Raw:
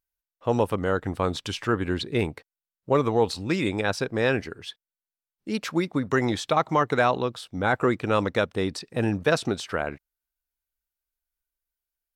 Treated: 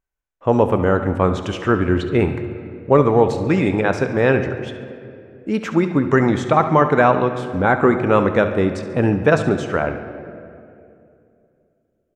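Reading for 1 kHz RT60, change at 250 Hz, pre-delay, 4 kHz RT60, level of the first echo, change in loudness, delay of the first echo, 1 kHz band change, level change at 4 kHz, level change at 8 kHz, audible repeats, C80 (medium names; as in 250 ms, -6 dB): 2.3 s, +9.0 dB, 5 ms, 1.5 s, -14.0 dB, +8.0 dB, 70 ms, +7.5 dB, -2.5 dB, no reading, 2, 10.5 dB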